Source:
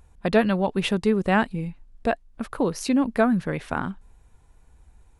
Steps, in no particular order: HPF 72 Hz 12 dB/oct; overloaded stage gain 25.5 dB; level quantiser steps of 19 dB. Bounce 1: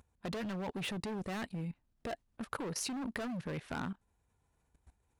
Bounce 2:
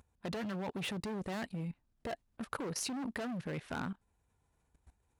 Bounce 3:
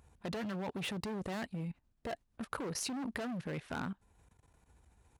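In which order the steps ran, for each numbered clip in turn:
HPF > overloaded stage > level quantiser; overloaded stage > HPF > level quantiser; overloaded stage > level quantiser > HPF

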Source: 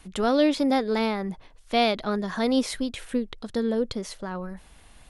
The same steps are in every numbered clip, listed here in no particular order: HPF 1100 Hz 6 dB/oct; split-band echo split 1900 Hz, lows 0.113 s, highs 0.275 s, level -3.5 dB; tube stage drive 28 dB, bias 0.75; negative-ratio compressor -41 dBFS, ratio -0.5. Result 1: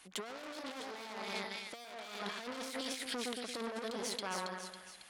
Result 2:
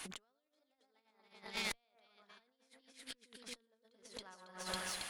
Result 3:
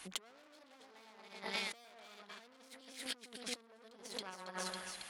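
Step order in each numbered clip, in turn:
split-band echo > tube stage > HPF > negative-ratio compressor; split-band echo > negative-ratio compressor > HPF > tube stage; split-band echo > tube stage > negative-ratio compressor > HPF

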